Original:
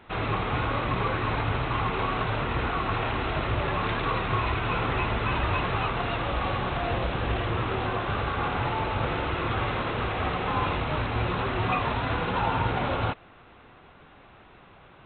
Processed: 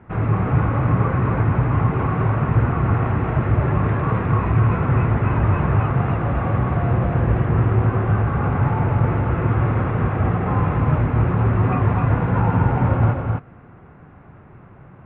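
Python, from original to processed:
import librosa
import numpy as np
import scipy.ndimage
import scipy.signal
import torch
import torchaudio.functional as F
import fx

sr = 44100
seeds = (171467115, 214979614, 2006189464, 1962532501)

p1 = scipy.signal.sosfilt(scipy.signal.butter(4, 2000.0, 'lowpass', fs=sr, output='sos'), x)
p2 = fx.peak_eq(p1, sr, hz=130.0, db=14.0, octaves=2.1)
y = p2 + fx.echo_single(p2, sr, ms=258, db=-3.5, dry=0)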